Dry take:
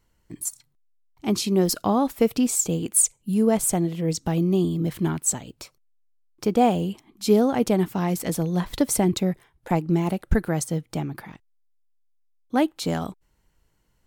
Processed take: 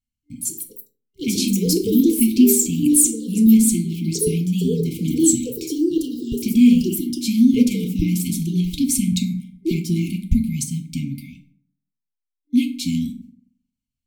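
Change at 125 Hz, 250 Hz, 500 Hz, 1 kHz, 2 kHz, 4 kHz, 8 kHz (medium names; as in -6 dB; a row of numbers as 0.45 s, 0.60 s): +3.0 dB, +7.5 dB, -2.5 dB, under -40 dB, -1.5 dB, +4.5 dB, +4.5 dB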